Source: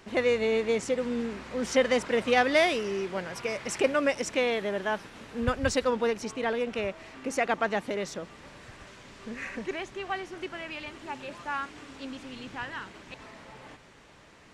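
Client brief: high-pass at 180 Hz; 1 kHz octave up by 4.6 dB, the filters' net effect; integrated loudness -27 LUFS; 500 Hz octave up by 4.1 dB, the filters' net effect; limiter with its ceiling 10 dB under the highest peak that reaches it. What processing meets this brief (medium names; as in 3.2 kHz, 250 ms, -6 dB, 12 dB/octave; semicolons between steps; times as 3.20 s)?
high-pass 180 Hz; peaking EQ 500 Hz +3.5 dB; peaking EQ 1 kHz +5 dB; trim +2 dB; peak limiter -15 dBFS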